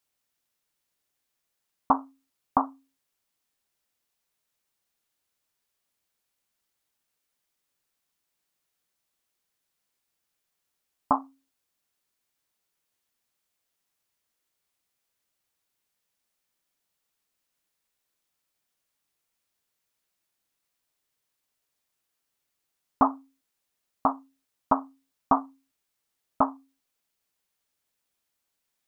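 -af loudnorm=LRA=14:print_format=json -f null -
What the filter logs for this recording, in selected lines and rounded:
"input_i" : "-28.4",
"input_tp" : "-7.0",
"input_lra" : "6.7",
"input_thresh" : "-40.1",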